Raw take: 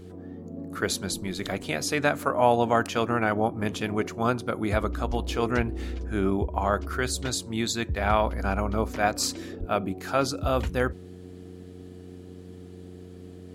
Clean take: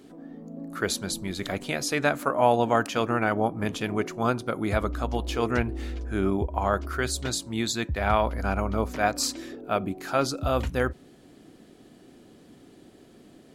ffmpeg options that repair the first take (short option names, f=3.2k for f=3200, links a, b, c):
-filter_complex "[0:a]bandreject=f=90.6:t=h:w=4,bandreject=f=181.2:t=h:w=4,bandreject=f=271.8:t=h:w=4,bandreject=f=362.4:t=h:w=4,bandreject=f=453:t=h:w=4,asplit=3[a][b][c];[a]afade=t=out:st=5.08:d=0.02[d];[b]highpass=f=140:w=0.5412,highpass=f=140:w=1.3066,afade=t=in:st=5.08:d=0.02,afade=t=out:st=5.2:d=0.02[e];[c]afade=t=in:st=5.2:d=0.02[f];[d][e][f]amix=inputs=3:normalize=0,asplit=3[g][h][i];[g]afade=t=out:st=9.59:d=0.02[j];[h]highpass=f=140:w=0.5412,highpass=f=140:w=1.3066,afade=t=in:st=9.59:d=0.02,afade=t=out:st=9.71:d=0.02[k];[i]afade=t=in:st=9.71:d=0.02[l];[j][k][l]amix=inputs=3:normalize=0"